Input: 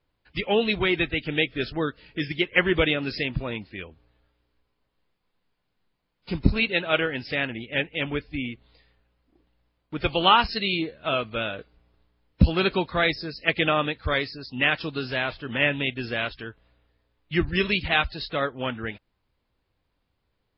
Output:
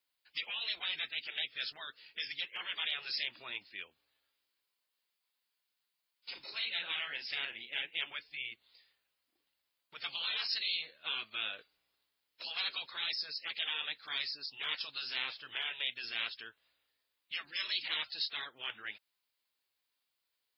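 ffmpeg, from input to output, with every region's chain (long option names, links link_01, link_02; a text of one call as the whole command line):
ffmpeg -i in.wav -filter_complex "[0:a]asettb=1/sr,asplit=3[link_01][link_02][link_03];[link_01]atrim=end=6.314[link_04];[link_02]atrim=start=6.31:end=7.98,asetpts=PTS-STARTPTS,afade=type=in:duration=0.004:curve=qsin,afade=type=out:start_time=1.666:duration=0.004:curve=qsin,acrossover=split=4000[link_05][link_06];[link_06]acompressor=threshold=-43dB:ratio=4:attack=1:release=60[link_07];[link_05][link_07]amix=inputs=2:normalize=0,asplit=2[link_08][link_09];[link_09]adelay=38,volume=-9dB[link_10];[link_08][link_10]amix=inputs=2:normalize=0,atrim=end_sample=73647[link_11];[link_03]atrim=start=7.976[link_12];[link_04][link_11]acrossfade=duration=0.004:curve1=hsin:curve2=qsin[link_13];[link_13][link_12]acrossfade=duration=0.004:curve1=qsin:curve2=hsin,afftfilt=real='re*lt(hypot(re,im),0.158)':imag='im*lt(hypot(re,im),0.158)':win_size=1024:overlap=0.75,aderivative,volume=4dB" out.wav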